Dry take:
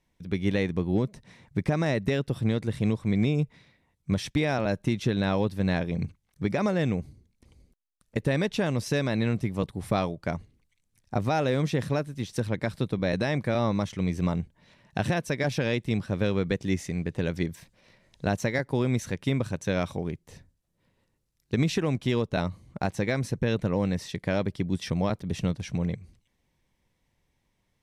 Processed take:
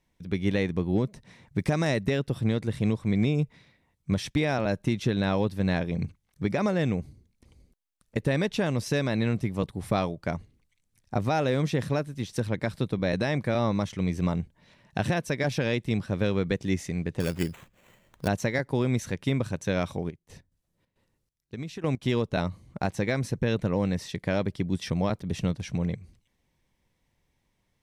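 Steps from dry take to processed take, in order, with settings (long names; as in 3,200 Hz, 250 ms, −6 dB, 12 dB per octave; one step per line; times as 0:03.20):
0:01.58–0:02.01: high-shelf EQ 3,600 Hz → 5,100 Hz +9 dB
0:17.20–0:18.28: sample-rate reduction 5,000 Hz, jitter 0%
0:20.09–0:22.01: gate pattern "..x.xxx.xxx..." 136 BPM −12 dB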